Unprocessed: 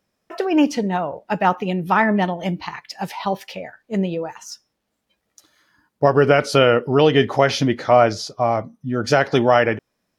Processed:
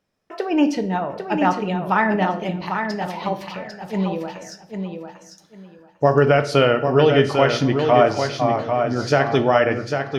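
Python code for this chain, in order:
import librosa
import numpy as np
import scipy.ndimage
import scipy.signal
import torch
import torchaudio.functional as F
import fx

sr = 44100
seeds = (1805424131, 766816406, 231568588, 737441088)

y = fx.high_shelf(x, sr, hz=7700.0, db=-8.0)
y = fx.echo_feedback(y, sr, ms=798, feedback_pct=20, wet_db=-6)
y = fx.room_shoebox(y, sr, seeds[0], volume_m3=130.0, walls='mixed', distance_m=0.33)
y = F.gain(torch.from_numpy(y), -2.0).numpy()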